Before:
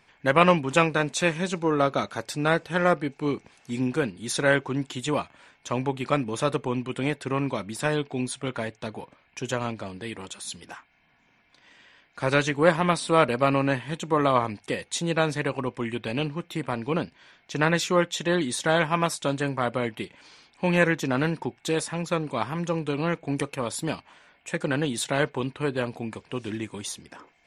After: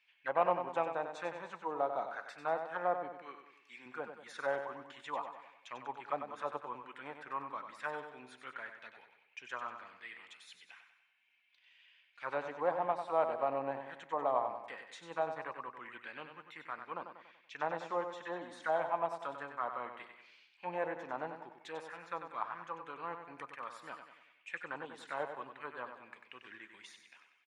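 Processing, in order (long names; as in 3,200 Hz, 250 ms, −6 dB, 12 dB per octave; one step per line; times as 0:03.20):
0:03.22–0:03.86: high-pass filter 380 Hz 6 dB per octave
envelope filter 760–2,800 Hz, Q 3.2, down, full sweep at −19.5 dBFS
on a send: repeating echo 95 ms, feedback 48%, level −8 dB
on the sum: level −5 dB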